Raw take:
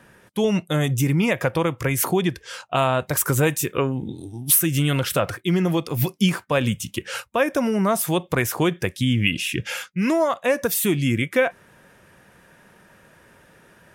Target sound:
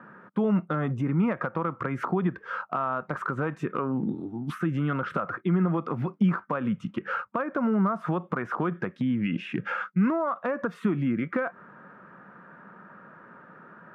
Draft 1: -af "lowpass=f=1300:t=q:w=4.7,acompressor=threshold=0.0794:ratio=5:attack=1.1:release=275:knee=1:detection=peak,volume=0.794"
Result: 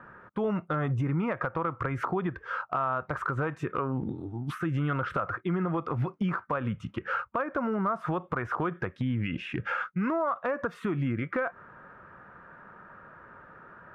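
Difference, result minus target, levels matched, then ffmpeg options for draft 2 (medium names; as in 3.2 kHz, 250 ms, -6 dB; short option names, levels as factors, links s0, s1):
250 Hz band -3.0 dB
-af "lowpass=f=1300:t=q:w=4.7,acompressor=threshold=0.0794:ratio=5:attack=1.1:release=275:knee=1:detection=peak,highpass=f=190:t=q:w=2.3,volume=0.794"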